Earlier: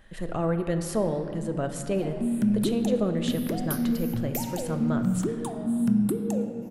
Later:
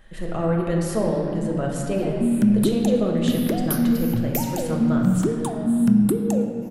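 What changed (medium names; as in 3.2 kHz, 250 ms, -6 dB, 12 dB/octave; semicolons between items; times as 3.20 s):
speech: send +9.0 dB; background +6.0 dB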